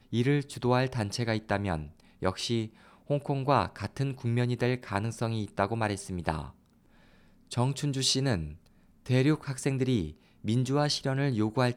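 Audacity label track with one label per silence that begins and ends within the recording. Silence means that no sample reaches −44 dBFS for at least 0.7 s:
6.500000	7.510000	silence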